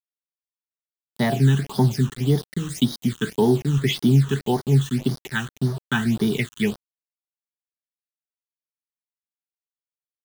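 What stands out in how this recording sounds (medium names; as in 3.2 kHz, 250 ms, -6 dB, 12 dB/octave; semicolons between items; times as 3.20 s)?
a quantiser's noise floor 6-bit, dither none; phasing stages 8, 1.8 Hz, lowest notch 620–2600 Hz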